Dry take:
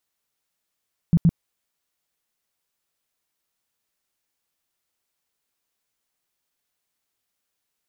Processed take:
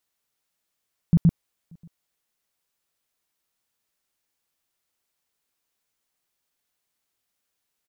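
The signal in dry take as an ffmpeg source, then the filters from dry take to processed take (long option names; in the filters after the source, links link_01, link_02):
-f lavfi -i "aevalsrc='0.266*sin(2*PI*167*mod(t,0.12))*lt(mod(t,0.12),7/167)':duration=0.24:sample_rate=44100"
-filter_complex "[0:a]asplit=2[link_01][link_02];[link_02]adelay=583.1,volume=-30dB,highshelf=frequency=4000:gain=-13.1[link_03];[link_01][link_03]amix=inputs=2:normalize=0"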